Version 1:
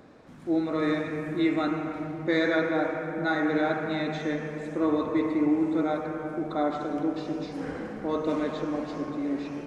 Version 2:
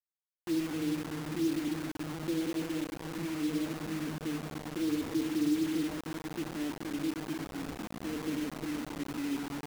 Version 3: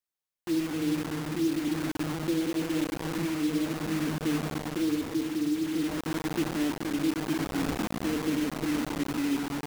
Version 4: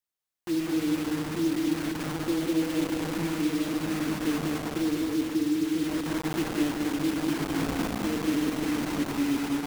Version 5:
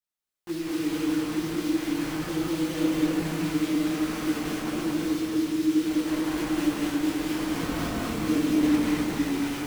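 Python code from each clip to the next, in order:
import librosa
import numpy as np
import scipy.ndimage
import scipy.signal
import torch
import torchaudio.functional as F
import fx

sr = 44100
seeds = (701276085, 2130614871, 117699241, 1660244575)

y1 = scipy.signal.sosfilt(scipy.signal.cheby2(4, 70, 1600.0, 'lowpass', fs=sr, output='sos'), x)
y1 = fx.quant_dither(y1, sr, seeds[0], bits=6, dither='none')
y1 = F.gain(torch.from_numpy(y1), -4.0).numpy()
y2 = fx.rider(y1, sr, range_db=10, speed_s=0.5)
y2 = F.gain(torch.from_numpy(y2), 5.0).numpy()
y3 = y2 + 10.0 ** (-3.5 / 20.0) * np.pad(y2, (int(199 * sr / 1000.0), 0))[:len(y2)]
y4 = fx.chorus_voices(y3, sr, voices=4, hz=1.3, base_ms=20, depth_ms=3.5, mix_pct=50)
y4 = fx.rev_gated(y4, sr, seeds[1], gate_ms=270, shape='rising', drr_db=-1.5)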